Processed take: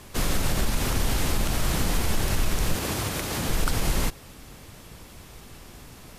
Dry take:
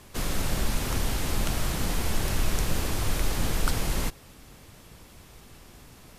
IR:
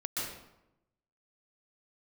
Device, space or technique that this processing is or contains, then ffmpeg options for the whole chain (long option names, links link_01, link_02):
clipper into limiter: -filter_complex "[0:a]asoftclip=type=hard:threshold=-13dB,alimiter=limit=-18.5dB:level=0:latency=1:release=64,asettb=1/sr,asplit=3[link_01][link_02][link_03];[link_01]atrim=end=2.754[link_04];[link_02]atrim=start=2.75:end=3.49,asetpts=PTS-STARTPTS,afade=type=in:duration=0.004:curve=qsin,afade=type=out:start_time=0.736:duration=0.004:curve=qsin,highpass=92[link_05];[link_03]atrim=start=3.486[link_06];[link_04][link_05]acrossfade=duration=0.004:curve1=hsin:curve2=qsin[link_07];[link_07][link_06]acrossfade=duration=0.004:curve1=qsin:curve2=hsin,volume=4.5dB"